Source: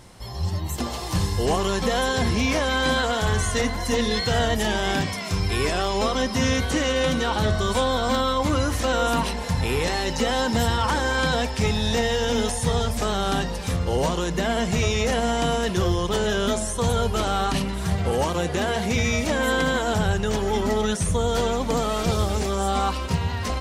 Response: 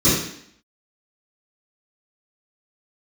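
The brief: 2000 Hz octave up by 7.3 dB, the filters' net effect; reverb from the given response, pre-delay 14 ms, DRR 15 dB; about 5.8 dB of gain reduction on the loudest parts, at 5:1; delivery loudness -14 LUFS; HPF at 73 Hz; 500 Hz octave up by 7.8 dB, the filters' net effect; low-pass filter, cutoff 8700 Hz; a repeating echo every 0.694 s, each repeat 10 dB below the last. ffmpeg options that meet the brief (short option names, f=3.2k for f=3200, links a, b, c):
-filter_complex "[0:a]highpass=73,lowpass=8.7k,equalizer=f=500:t=o:g=8.5,equalizer=f=2k:t=o:g=9,acompressor=threshold=-18dB:ratio=5,aecho=1:1:694|1388|2082|2776:0.316|0.101|0.0324|0.0104,asplit=2[a][b];[1:a]atrim=start_sample=2205,adelay=14[c];[b][c]afir=irnorm=-1:irlink=0,volume=-35dB[d];[a][d]amix=inputs=2:normalize=0,volume=7dB"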